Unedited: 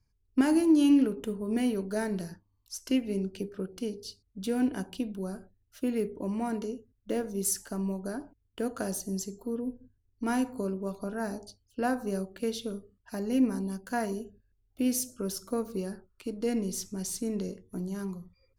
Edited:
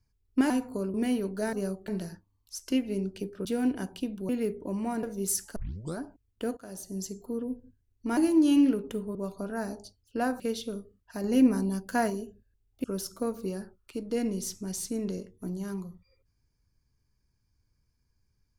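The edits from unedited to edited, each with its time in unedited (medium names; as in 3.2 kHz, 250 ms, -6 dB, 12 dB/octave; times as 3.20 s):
0.50–1.48 s: swap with 10.34–10.78 s
3.64–4.42 s: delete
5.26–5.84 s: delete
6.58–7.20 s: delete
7.73 s: tape start 0.42 s
8.74–9.29 s: fade in linear, from -20 dB
12.03–12.38 s: move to 2.07 s
13.22–14.08 s: gain +4 dB
14.82–15.15 s: delete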